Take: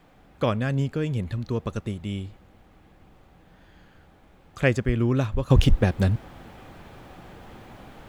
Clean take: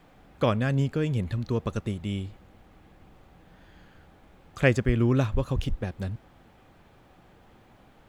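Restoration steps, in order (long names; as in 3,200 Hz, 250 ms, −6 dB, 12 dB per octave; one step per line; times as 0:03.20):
level 0 dB, from 0:05.50 −11 dB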